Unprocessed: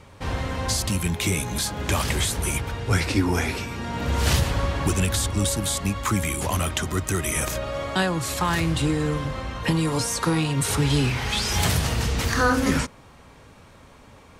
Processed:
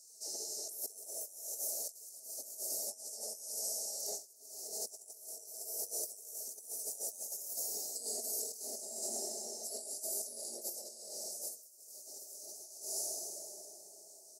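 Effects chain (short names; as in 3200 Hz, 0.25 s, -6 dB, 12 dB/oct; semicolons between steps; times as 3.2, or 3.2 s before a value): spectral gate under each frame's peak -25 dB weak; inverse Chebyshev band-stop 1000–3500 Hz, stop band 40 dB; comb 4.8 ms, depth 42%; plate-style reverb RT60 4 s, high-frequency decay 0.6×, DRR 0.5 dB; negative-ratio compressor -44 dBFS, ratio -0.5; HPF 460 Hz 12 dB/oct; gain +2 dB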